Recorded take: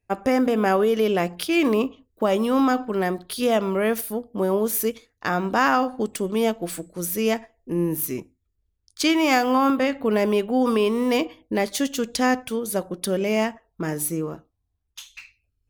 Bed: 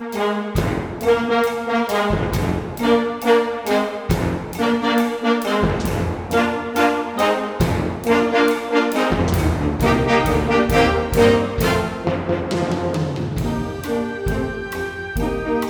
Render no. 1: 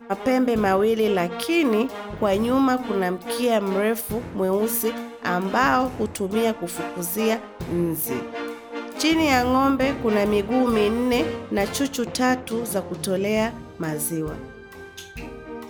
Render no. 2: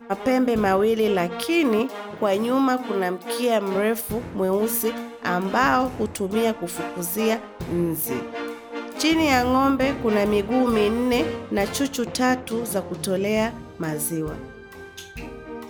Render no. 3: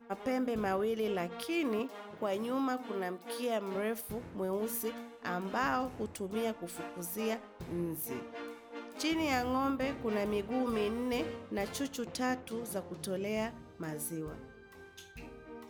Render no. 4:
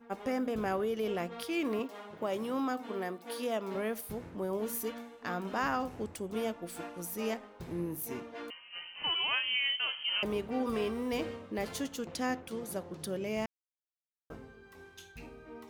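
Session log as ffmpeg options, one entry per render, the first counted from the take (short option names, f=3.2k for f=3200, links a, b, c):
-filter_complex "[1:a]volume=-15dB[a];[0:a][a]amix=inputs=2:normalize=0"
-filter_complex "[0:a]asettb=1/sr,asplit=3[a][b][c];[a]atrim=end=1.794[d];[b]atrim=start=1.79:end=3.75,asetpts=PTS-STARTPTS,afade=t=in:d=0.004:c=qsin,afade=t=out:st=1.956:d=0.004:c=qsin,highpass=200[e];[c]atrim=start=3.746[f];[d][e]acrossfade=d=0.004:c1=hsin:c2=qsin[g];[g][f]acrossfade=d=0.004:c1=qsin:c2=hsin"
-af "volume=-13dB"
-filter_complex "[0:a]asettb=1/sr,asplit=3[a][b][c];[a]atrim=end=8.504[d];[b]atrim=start=8.5:end=10.23,asetpts=PTS-STARTPTS,afade=t=in:d=0.004:c=qsin,afade=t=out:st=1.726:d=0.004:c=qsin,lowpass=f=2.8k:t=q:w=0.5098,lowpass=f=2.8k:t=q:w=0.6013,lowpass=f=2.8k:t=q:w=0.9,lowpass=f=2.8k:t=q:w=2.563,afreqshift=-3300[e];[c]atrim=start=10.226[f];[d][e]acrossfade=d=0.004:c1=hsin:c2=qsin[g];[g][f]acrossfade=d=0.004:c1=qsin:c2=hsin,asplit=3[h][i][j];[h]atrim=end=13.46,asetpts=PTS-STARTPTS,afade=t=out:st=13.456:d=0.004:c=hsin[k];[i]atrim=start=13.46:end=14.3,asetpts=PTS-STARTPTS,volume=0[l];[j]atrim=start=14.3,asetpts=PTS-STARTPTS,afade=t=in:d=0.004:c=hsin[m];[k][l][m]concat=n=3:v=0:a=1"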